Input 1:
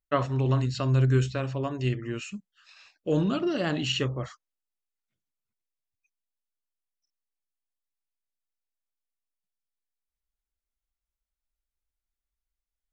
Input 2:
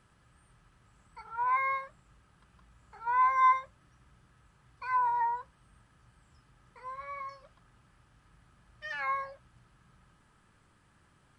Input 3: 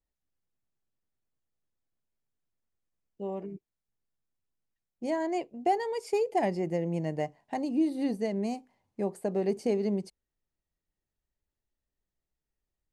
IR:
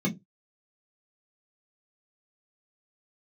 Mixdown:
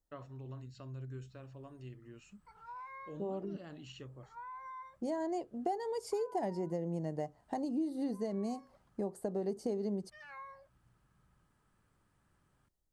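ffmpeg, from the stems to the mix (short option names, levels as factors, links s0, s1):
-filter_complex "[0:a]volume=0.188[s0];[1:a]alimiter=level_in=1.12:limit=0.0631:level=0:latency=1:release=127,volume=0.891,adelay=1300,volume=0.422[s1];[2:a]equalizer=f=2400:t=o:w=0.64:g=-13.5,volume=1.26[s2];[s0][s1]amix=inputs=2:normalize=0,equalizer=f=2900:w=0.48:g=-5,acompressor=threshold=0.00141:ratio=1.5,volume=1[s3];[s2][s3]amix=inputs=2:normalize=0,acompressor=threshold=0.0141:ratio=2.5"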